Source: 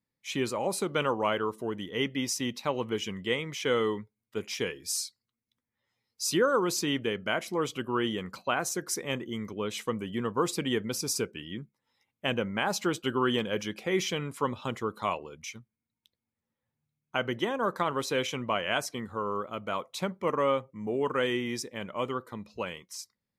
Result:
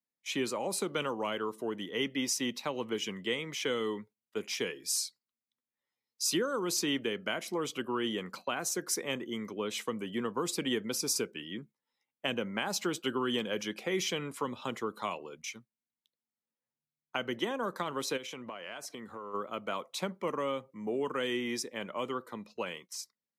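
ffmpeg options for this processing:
-filter_complex "[0:a]asplit=3[a][b][c];[a]afade=t=out:st=18.16:d=0.02[d];[b]acompressor=threshold=-37dB:ratio=16:attack=3.2:release=140:knee=1:detection=peak,afade=t=in:st=18.16:d=0.02,afade=t=out:st=19.33:d=0.02[e];[c]afade=t=in:st=19.33:d=0.02[f];[d][e][f]amix=inputs=3:normalize=0,agate=range=-10dB:threshold=-50dB:ratio=16:detection=peak,highpass=210,acrossover=split=270|3000[g][h][i];[h]acompressor=threshold=-32dB:ratio=6[j];[g][j][i]amix=inputs=3:normalize=0"

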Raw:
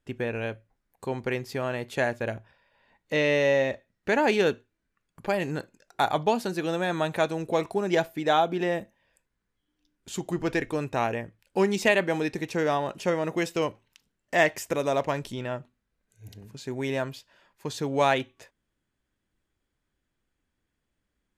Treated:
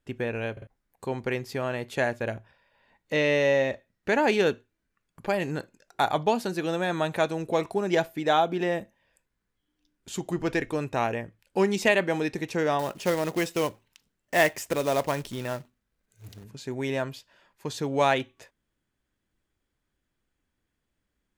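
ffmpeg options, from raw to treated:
-filter_complex "[0:a]asettb=1/sr,asplit=3[a][b][c];[a]atrim=end=12.794[d];[b]atrim=start=12.79:end=16.44,asetpts=PTS-STARTPTS,afade=t=in:d=0.004:c=qsin,afade=t=out:st=3.646:d=0.004:c=qsin,acrusher=bits=3:mode=log:mix=0:aa=0.000001[e];[c]atrim=start=16.436[f];[d][e]acrossfade=d=0.004:c1=hsin:c2=qsin[g];[g][f]acrossfade=d=0.004:c1=qsin:c2=hsin,asplit=4[h][i][j][k];[h]atrim=end=0.572[l];[i]atrim=start=0.518:end=0.572[m];[j]atrim=start=0.518:end=0.572[n];[k]atrim=start=0.668[o];[l][m]acrossfade=d=0.004:c1=hsin:c2=hsin[p];[p][n]acrossfade=d=0.004:c1=hsin:c2=hsin[q];[q][o]acrossfade=d=0.004:c1=hsin:c2=hsin"

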